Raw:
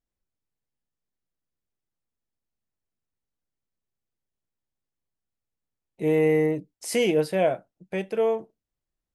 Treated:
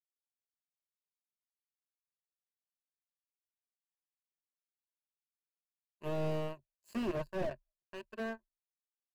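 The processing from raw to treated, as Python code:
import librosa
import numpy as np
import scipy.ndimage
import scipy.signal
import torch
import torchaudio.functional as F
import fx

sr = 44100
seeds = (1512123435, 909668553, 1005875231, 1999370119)

y = fx.power_curve(x, sr, exponent=3.0)
y = fx.ripple_eq(y, sr, per_octave=1.4, db=14)
y = fx.slew_limit(y, sr, full_power_hz=14.0)
y = y * librosa.db_to_amplitude(-1.0)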